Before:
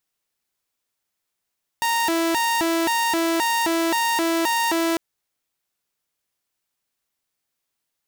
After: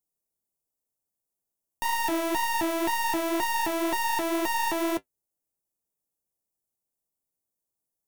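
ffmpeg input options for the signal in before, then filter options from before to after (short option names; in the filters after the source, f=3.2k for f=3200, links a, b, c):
-f lavfi -i "aevalsrc='0.15*(2*mod((629*t+298/1.9*(0.5-abs(mod(1.9*t,1)-0.5))),1)-1)':d=3.15:s=44100"
-filter_complex "[0:a]acrossover=split=180|890|6300[a][b][c][d];[c]acrusher=bits=4:dc=4:mix=0:aa=0.000001[e];[a][b][e][d]amix=inputs=4:normalize=0,flanger=delay=9:depth=4.9:regen=-49:speed=2:shape=sinusoidal"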